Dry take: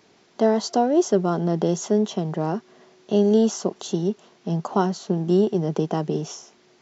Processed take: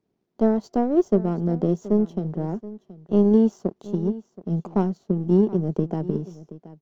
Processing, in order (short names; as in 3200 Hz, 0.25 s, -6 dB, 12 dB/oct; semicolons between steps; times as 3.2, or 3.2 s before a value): power-law curve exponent 1.4; tilt shelf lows +10 dB, about 650 Hz; echo 0.725 s -17 dB; gain -3 dB